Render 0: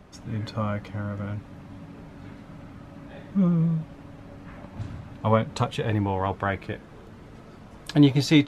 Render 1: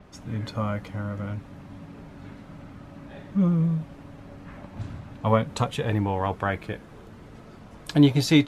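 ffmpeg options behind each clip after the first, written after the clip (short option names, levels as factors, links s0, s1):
-af "adynamicequalizer=threshold=0.00316:dfrequency=7500:dqfactor=0.7:tfrequency=7500:tqfactor=0.7:attack=5:release=100:ratio=0.375:range=3:mode=boostabove:tftype=highshelf"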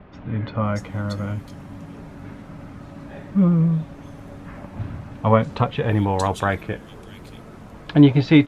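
-filter_complex "[0:a]acrossover=split=3500[s0][s1];[s1]adelay=630[s2];[s0][s2]amix=inputs=2:normalize=0,volume=1.78"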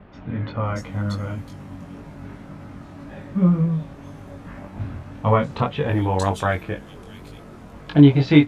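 -af "flanger=delay=20:depth=2.5:speed=1.9,volume=1.33"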